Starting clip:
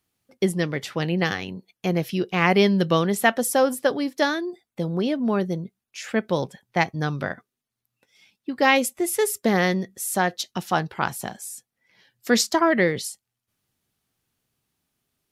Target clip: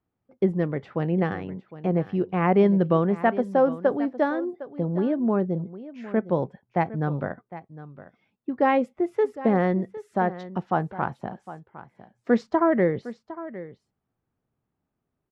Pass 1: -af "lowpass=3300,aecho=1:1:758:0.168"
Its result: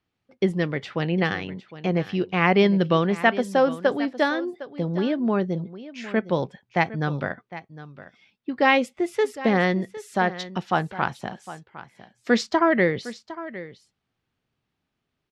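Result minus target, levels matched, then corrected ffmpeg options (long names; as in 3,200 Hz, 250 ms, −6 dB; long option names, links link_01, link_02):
4,000 Hz band +15.0 dB
-af "lowpass=1100,aecho=1:1:758:0.168"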